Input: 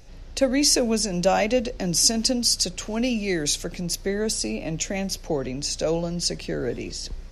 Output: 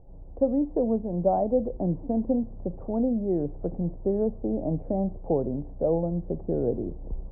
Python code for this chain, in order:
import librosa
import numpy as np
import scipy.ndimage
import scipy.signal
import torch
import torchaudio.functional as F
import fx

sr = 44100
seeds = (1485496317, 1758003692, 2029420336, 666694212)

p1 = scipy.signal.sosfilt(scipy.signal.butter(6, 870.0, 'lowpass', fs=sr, output='sos'), x)
p2 = fx.rider(p1, sr, range_db=4, speed_s=0.5)
p3 = p1 + F.gain(torch.from_numpy(p2), 3.0).numpy()
y = F.gain(torch.from_numpy(p3), -8.0).numpy()